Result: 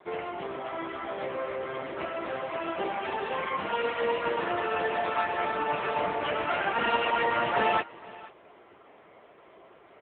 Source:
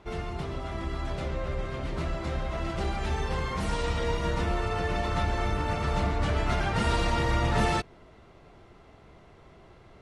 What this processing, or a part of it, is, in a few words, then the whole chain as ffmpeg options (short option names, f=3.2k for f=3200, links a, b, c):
satellite phone: -af "adynamicequalizer=threshold=0.00316:dfrequency=2800:dqfactor=5.3:tfrequency=2800:tqfactor=5.3:attack=5:release=100:ratio=0.375:range=2:mode=boostabove:tftype=bell,highpass=370,lowpass=3.3k,aecho=1:1:480:0.1,volume=6dB" -ar 8000 -c:a libopencore_amrnb -b:a 6700